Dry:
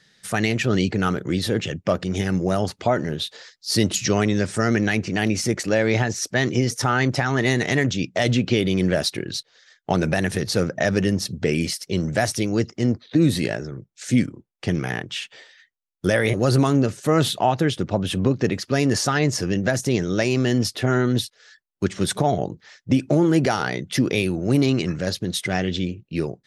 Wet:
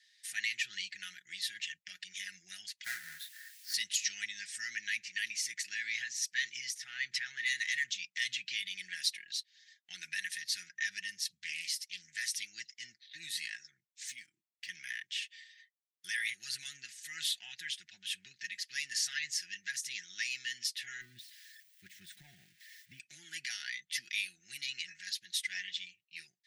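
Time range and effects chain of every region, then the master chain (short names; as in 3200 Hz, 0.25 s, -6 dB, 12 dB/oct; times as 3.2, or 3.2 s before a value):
2.84–3.74 half-waves squared off + resonant high shelf 2000 Hz -10.5 dB, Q 3 + requantised 8-bit, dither triangular
6.74–7.46 LPF 3500 Hz 6 dB/oct + transient shaper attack -5 dB, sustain +8 dB
11.28–12.26 bell 600 Hz -13.5 dB 0.87 oct + Doppler distortion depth 0.21 ms
14.08–14.69 median filter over 3 samples + bell 310 Hz +9.5 dB 0.26 oct + compressor 2:1, threshold -27 dBFS
21.01–23 switching spikes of -19 dBFS + de-esser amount 75% + tilt -3.5 dB/oct
whole clip: elliptic high-pass 1800 Hz, stop band 40 dB; comb 5.5 ms, depth 56%; gain -8.5 dB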